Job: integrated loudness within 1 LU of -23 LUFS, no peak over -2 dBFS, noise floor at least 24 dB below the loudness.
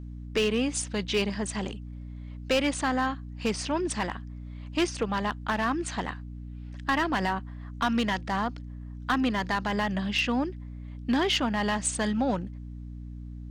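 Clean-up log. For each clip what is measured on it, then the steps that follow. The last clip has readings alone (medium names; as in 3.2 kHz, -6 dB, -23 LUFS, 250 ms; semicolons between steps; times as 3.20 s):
clipped samples 0.5%; clipping level -18.5 dBFS; hum 60 Hz; highest harmonic 300 Hz; hum level -37 dBFS; loudness -28.5 LUFS; peak level -18.5 dBFS; loudness target -23.0 LUFS
-> clip repair -18.5 dBFS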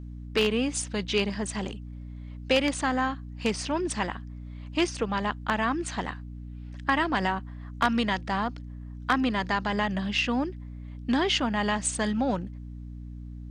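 clipped samples 0.0%; hum 60 Hz; highest harmonic 300 Hz; hum level -37 dBFS
-> de-hum 60 Hz, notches 5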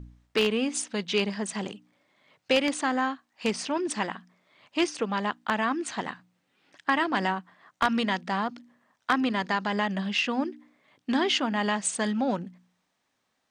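hum not found; loudness -28.0 LUFS; peak level -9.5 dBFS; loudness target -23.0 LUFS
-> trim +5 dB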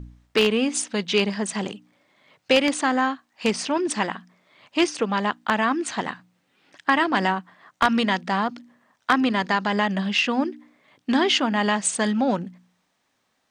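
loudness -23.0 LUFS; peak level -4.5 dBFS; noise floor -72 dBFS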